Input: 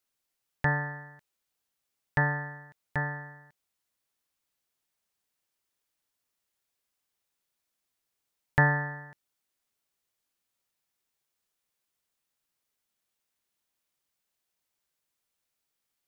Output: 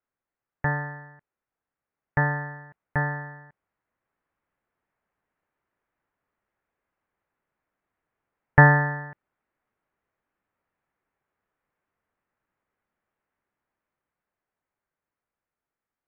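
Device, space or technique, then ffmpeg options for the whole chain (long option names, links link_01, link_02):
action camera in a waterproof case: -af "lowpass=frequency=1900:width=0.5412,lowpass=frequency=1900:width=1.3066,dynaudnorm=framelen=740:gausssize=9:maxgain=9dB,volume=1.5dB" -ar 22050 -c:a aac -b:a 96k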